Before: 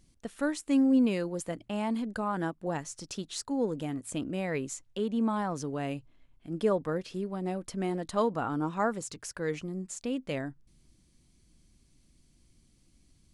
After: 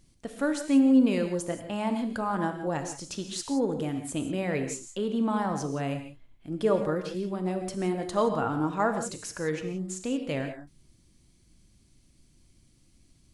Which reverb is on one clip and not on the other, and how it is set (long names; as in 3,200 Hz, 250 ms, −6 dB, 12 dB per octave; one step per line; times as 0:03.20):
reverb whose tail is shaped and stops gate 200 ms flat, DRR 6 dB
level +2 dB